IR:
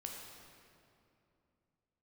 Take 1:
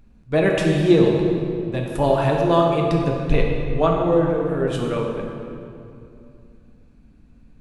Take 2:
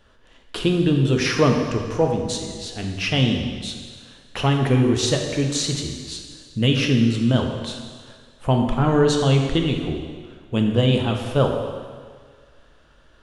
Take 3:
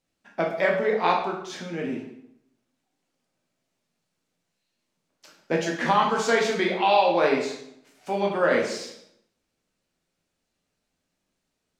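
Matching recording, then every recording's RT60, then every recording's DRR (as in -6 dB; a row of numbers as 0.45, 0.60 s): 1; 2.7, 1.8, 0.75 s; -0.5, 2.0, -1.5 dB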